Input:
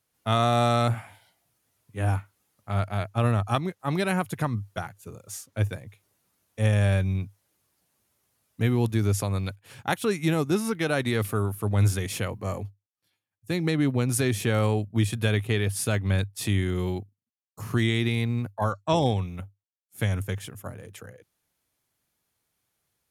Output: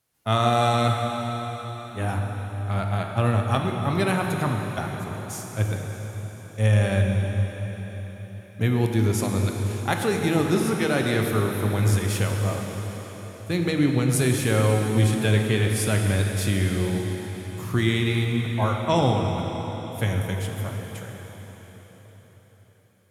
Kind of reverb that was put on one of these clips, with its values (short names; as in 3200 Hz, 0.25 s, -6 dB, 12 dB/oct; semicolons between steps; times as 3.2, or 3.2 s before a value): plate-style reverb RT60 4.9 s, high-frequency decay 0.95×, DRR 1.5 dB; gain +1 dB